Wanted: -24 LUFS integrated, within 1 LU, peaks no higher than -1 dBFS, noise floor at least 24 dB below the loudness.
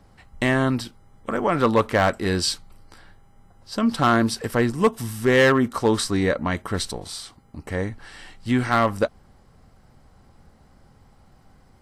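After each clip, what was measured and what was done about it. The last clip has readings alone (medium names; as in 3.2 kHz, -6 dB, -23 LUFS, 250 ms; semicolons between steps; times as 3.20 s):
clipped samples 0.4%; clipping level -10.5 dBFS; loudness -22.0 LUFS; peak level -10.5 dBFS; loudness target -24.0 LUFS
-> clip repair -10.5 dBFS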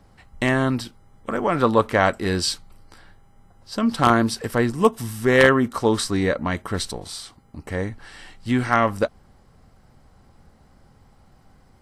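clipped samples 0.0%; loudness -21.5 LUFS; peak level -1.5 dBFS; loudness target -24.0 LUFS
-> trim -2.5 dB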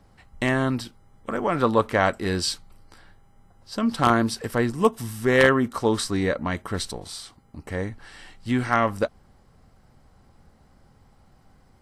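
loudness -24.0 LUFS; peak level -4.0 dBFS; noise floor -57 dBFS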